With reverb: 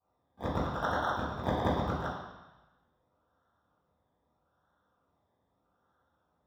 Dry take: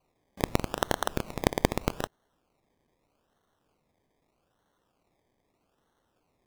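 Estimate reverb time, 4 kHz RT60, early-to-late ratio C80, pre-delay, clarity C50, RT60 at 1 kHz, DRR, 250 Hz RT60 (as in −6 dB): 1.1 s, 1.2 s, 3.0 dB, 3 ms, 0.5 dB, 1.1 s, −14.0 dB, 1.0 s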